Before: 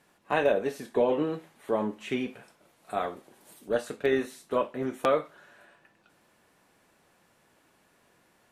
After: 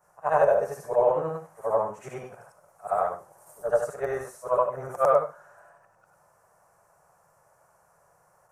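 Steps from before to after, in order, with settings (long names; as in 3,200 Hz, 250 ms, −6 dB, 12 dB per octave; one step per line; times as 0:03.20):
every overlapping window played backwards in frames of 200 ms
drawn EQ curve 160 Hz 0 dB, 250 Hz −22 dB, 590 Hz +6 dB, 1,300 Hz +4 dB, 1,900 Hz −8 dB, 3,600 Hz −23 dB, 5,800 Hz −1 dB, 9,500 Hz +1 dB, 14,000 Hz −1 dB
level +4.5 dB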